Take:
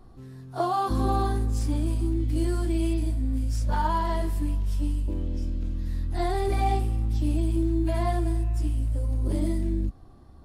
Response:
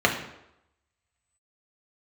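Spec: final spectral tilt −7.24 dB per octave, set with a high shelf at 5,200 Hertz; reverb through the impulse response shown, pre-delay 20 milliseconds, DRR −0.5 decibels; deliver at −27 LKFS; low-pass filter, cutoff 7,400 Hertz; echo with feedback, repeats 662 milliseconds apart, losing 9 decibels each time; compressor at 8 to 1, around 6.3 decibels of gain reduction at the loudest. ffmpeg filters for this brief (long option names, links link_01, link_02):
-filter_complex "[0:a]lowpass=7400,highshelf=frequency=5200:gain=8.5,acompressor=threshold=-27dB:ratio=8,aecho=1:1:662|1324|1986|2648:0.355|0.124|0.0435|0.0152,asplit=2[link_01][link_02];[1:a]atrim=start_sample=2205,adelay=20[link_03];[link_02][link_03]afir=irnorm=-1:irlink=0,volume=-17dB[link_04];[link_01][link_04]amix=inputs=2:normalize=0,volume=3.5dB"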